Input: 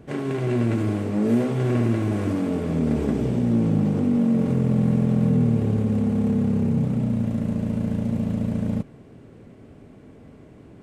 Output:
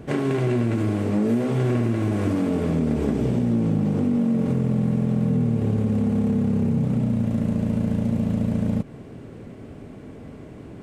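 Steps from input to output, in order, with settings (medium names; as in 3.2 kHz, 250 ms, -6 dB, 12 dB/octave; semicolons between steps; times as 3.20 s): compression 4:1, threshold -26 dBFS, peak gain reduction 9 dB; trim +6.5 dB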